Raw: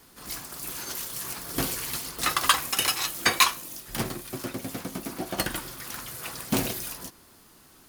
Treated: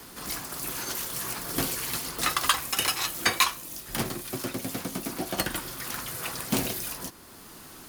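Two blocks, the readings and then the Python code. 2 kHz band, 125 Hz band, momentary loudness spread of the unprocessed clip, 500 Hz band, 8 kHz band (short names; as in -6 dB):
-1.5 dB, -0.5 dB, 13 LU, 0.0 dB, -0.5 dB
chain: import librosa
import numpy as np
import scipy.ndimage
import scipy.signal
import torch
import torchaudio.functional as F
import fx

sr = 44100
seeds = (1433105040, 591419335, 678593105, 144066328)

y = fx.band_squash(x, sr, depth_pct=40)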